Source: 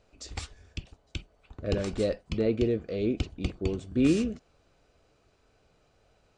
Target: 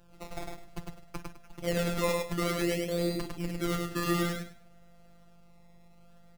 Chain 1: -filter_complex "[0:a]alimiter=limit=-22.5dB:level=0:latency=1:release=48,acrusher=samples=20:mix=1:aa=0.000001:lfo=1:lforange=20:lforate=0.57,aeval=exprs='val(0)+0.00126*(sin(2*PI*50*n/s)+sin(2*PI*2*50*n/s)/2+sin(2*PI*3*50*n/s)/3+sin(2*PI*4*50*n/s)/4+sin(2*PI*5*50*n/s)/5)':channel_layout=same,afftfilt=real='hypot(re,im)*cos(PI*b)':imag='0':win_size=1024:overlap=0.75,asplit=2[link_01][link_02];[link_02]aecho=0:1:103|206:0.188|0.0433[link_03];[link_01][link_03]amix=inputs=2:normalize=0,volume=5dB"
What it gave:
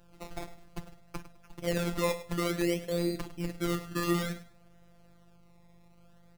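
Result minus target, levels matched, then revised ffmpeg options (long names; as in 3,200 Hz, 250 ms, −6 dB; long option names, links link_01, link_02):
echo-to-direct −11.5 dB
-filter_complex "[0:a]alimiter=limit=-22.5dB:level=0:latency=1:release=48,acrusher=samples=20:mix=1:aa=0.000001:lfo=1:lforange=20:lforate=0.57,aeval=exprs='val(0)+0.00126*(sin(2*PI*50*n/s)+sin(2*PI*2*50*n/s)/2+sin(2*PI*3*50*n/s)/3+sin(2*PI*4*50*n/s)/4+sin(2*PI*5*50*n/s)/5)':channel_layout=same,afftfilt=real='hypot(re,im)*cos(PI*b)':imag='0':win_size=1024:overlap=0.75,asplit=2[link_01][link_02];[link_02]aecho=0:1:103|206|309:0.708|0.163|0.0375[link_03];[link_01][link_03]amix=inputs=2:normalize=0,volume=5dB"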